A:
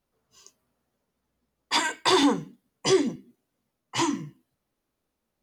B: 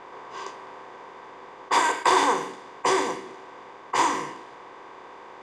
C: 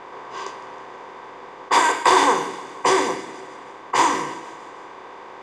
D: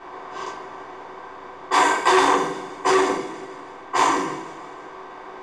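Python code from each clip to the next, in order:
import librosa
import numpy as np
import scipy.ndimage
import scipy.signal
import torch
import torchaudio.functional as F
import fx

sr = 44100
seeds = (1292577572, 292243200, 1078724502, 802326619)

y1 = fx.bin_compress(x, sr, power=0.4)
y1 = fx.graphic_eq(y1, sr, hz=(125, 250, 500, 1000, 2000, 4000, 8000), db=(-6, -10, 7, 9, 5, -5, 5))
y1 = fx.env_lowpass(y1, sr, base_hz=2700.0, full_db=-13.5)
y1 = y1 * librosa.db_to_amplitude(-7.5)
y2 = fx.echo_feedback(y1, sr, ms=159, feedback_pct=58, wet_db=-17)
y2 = y2 * librosa.db_to_amplitude(4.5)
y3 = fx.room_shoebox(y2, sr, seeds[0], volume_m3=170.0, walls='furnished', distance_m=3.5)
y3 = fx.transformer_sat(y3, sr, knee_hz=1400.0)
y3 = y3 * librosa.db_to_amplitude(-7.0)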